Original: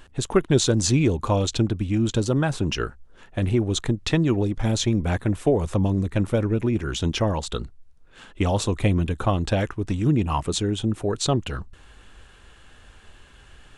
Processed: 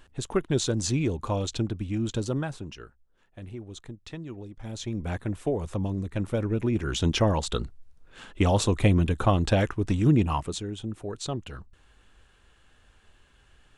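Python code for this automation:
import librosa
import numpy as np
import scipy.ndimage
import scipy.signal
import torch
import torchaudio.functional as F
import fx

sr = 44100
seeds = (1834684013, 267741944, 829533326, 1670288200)

y = fx.gain(x, sr, db=fx.line((2.36, -6.5), (2.79, -18.0), (4.53, -18.0), (5.06, -7.5), (6.09, -7.5), (7.1, 0.0), (10.21, 0.0), (10.63, -10.0)))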